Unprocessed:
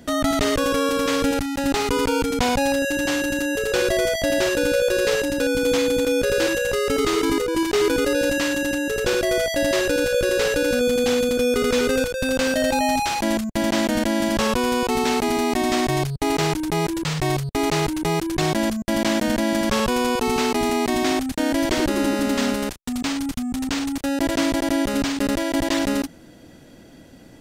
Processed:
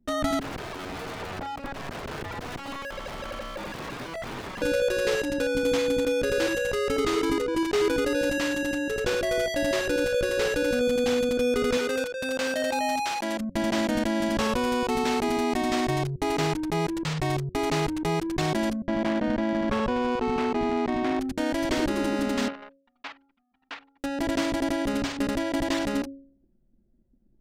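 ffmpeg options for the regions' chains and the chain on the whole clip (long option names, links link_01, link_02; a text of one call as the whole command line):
ffmpeg -i in.wav -filter_complex "[0:a]asettb=1/sr,asplit=3[link_01][link_02][link_03];[link_01]atrim=end=0.394[link_04];[link_02]atrim=start=0.39:end=4.62,asetpts=PTS-STARTPTS,afade=type=in:duration=0.004:curve=qsin,afade=type=out:start_time=4.226:duration=0.004:curve=qsin,acrossover=split=580|1500[link_05][link_06][link_07];[link_05]acompressor=threshold=-23dB:ratio=4[link_08];[link_06]acompressor=threshold=-25dB:ratio=4[link_09];[link_07]acompressor=threshold=-39dB:ratio=4[link_10];[link_08][link_09][link_10]amix=inputs=3:normalize=0,aeval=exprs='(mod(17.8*val(0)+1,2)-1)/17.8':channel_layout=same,tiltshelf=frequency=1400:gain=5.5[link_11];[link_03]atrim=start=4.616[link_12];[link_04][link_11]acrossfade=duration=0.004:curve1=hsin:curve2=qsin[link_13];[link_13][link_12]acrossfade=duration=0.004:curve1=qsin:curve2=hsin,asettb=1/sr,asplit=3[link_14][link_15][link_16];[link_14]atrim=end=11.774[link_17];[link_15]atrim=start=11.77:end=13.4,asetpts=PTS-STARTPTS,afade=type=in:duration=0.004:curve=qsin,afade=type=out:start_time=1.626:duration=0.004:curve=qsin,highpass=frequency=410:poles=1,asoftclip=type=hard:threshold=-13.5dB[link_18];[link_16]atrim=start=13.396[link_19];[link_17][link_18]acrossfade=duration=0.004:curve1=hsin:curve2=qsin[link_20];[link_20][link_19]acrossfade=duration=0.004:curve1=qsin:curve2=hsin,asettb=1/sr,asplit=3[link_21][link_22][link_23];[link_21]atrim=end=18.874[link_24];[link_22]atrim=start=18.87:end=21.21,asetpts=PTS-STARTPTS,afade=type=in:duration=0.004:curve=qsin,afade=type=out:start_time=2.336:duration=0.004:curve=qsin,equalizer=frequency=5000:width=0.64:gain=-3.5,adynamicsmooth=sensitivity=2.5:basefreq=1400[link_25];[link_23]atrim=start=21.206[link_26];[link_24][link_25]acrossfade=duration=0.004:curve1=hsin:curve2=qsin[link_27];[link_27][link_26]acrossfade=duration=0.004:curve1=qsin:curve2=hsin,asettb=1/sr,asplit=3[link_28][link_29][link_30];[link_28]atrim=end=22.484[link_31];[link_29]atrim=start=22.48:end=24.04,asetpts=PTS-STARTPTS,afade=type=in:duration=0.004:curve=qsin,afade=type=out:start_time=1.556:duration=0.004:curve=qsin,highpass=790,lowpass=3200,aeval=exprs='sgn(val(0))*max(abs(val(0))-0.00316,0)':channel_layout=same[link_32];[link_30]atrim=start=24.036[link_33];[link_31][link_32]acrossfade=duration=0.004:curve1=hsin:curve2=qsin[link_34];[link_34][link_33]acrossfade=duration=0.004:curve1=qsin:curve2=hsin,anlmdn=39.8,highshelf=frequency=4700:gain=-4.5,bandreject=frequency=91.61:width_type=h:width=4,bandreject=frequency=183.22:width_type=h:width=4,bandreject=frequency=274.83:width_type=h:width=4,bandreject=frequency=366.44:width_type=h:width=4,bandreject=frequency=458.05:width_type=h:width=4,bandreject=frequency=549.66:width_type=h:width=4,volume=-4dB" out.wav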